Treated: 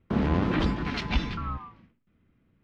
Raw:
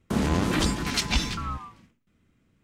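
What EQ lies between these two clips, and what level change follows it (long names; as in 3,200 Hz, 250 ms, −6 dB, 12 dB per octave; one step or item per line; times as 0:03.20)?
high-frequency loss of the air 310 metres
0.0 dB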